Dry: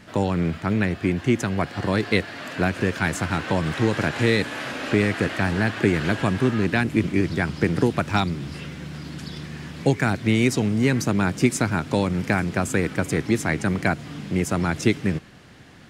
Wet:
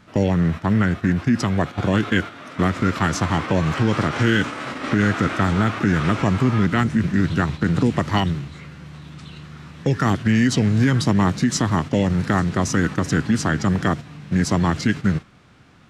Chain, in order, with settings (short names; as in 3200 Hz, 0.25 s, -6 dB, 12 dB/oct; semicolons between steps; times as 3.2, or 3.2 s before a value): limiter -12 dBFS, peak gain reduction 7 dB; formant shift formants -4 st; gate -30 dBFS, range -8 dB; gain +4.5 dB